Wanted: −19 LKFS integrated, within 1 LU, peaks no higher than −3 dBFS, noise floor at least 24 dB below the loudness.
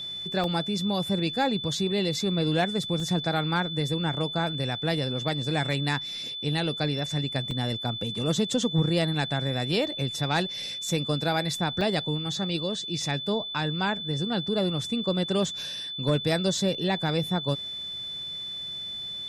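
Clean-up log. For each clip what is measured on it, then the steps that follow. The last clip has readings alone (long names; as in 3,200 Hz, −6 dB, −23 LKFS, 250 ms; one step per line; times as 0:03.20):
number of dropouts 4; longest dropout 2.0 ms; interfering tone 3,500 Hz; level of the tone −33 dBFS; integrated loudness −27.5 LKFS; sample peak −14.0 dBFS; target loudness −19.0 LKFS
→ repair the gap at 0:00.44/0:03.00/0:07.51/0:11.81, 2 ms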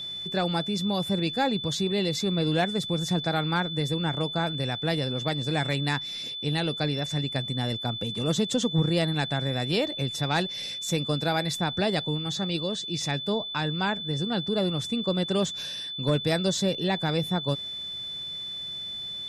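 number of dropouts 0; interfering tone 3,500 Hz; level of the tone −33 dBFS
→ notch filter 3,500 Hz, Q 30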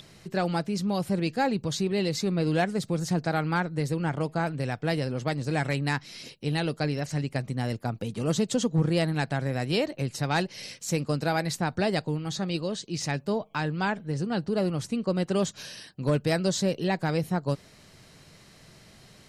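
interfering tone none found; integrated loudness −28.5 LKFS; sample peak −14.5 dBFS; target loudness −19.0 LKFS
→ level +9.5 dB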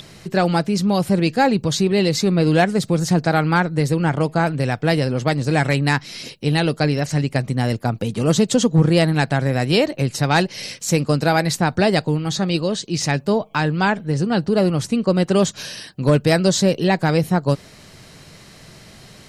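integrated loudness −19.0 LKFS; sample peak −5.0 dBFS; background noise floor −45 dBFS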